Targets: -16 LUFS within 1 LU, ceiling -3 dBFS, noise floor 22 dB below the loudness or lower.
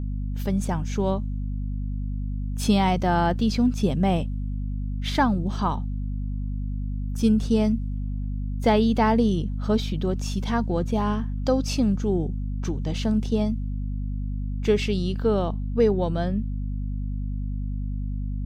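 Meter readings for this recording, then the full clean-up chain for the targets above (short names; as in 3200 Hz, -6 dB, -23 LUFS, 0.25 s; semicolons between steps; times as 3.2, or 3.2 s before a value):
hum 50 Hz; harmonics up to 250 Hz; hum level -26 dBFS; loudness -25.5 LUFS; peak -7.5 dBFS; loudness target -16.0 LUFS
-> notches 50/100/150/200/250 Hz; gain +9.5 dB; limiter -3 dBFS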